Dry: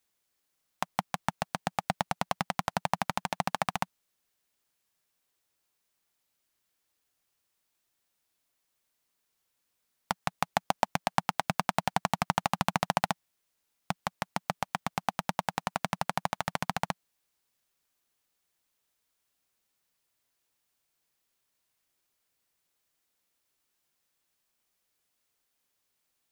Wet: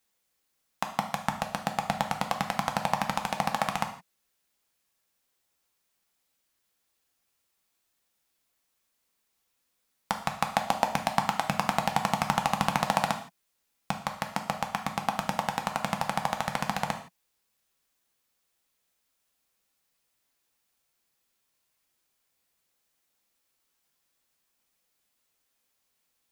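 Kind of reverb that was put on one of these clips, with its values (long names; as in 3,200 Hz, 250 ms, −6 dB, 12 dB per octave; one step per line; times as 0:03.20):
reverb whose tail is shaped and stops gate 190 ms falling, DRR 4 dB
level +1 dB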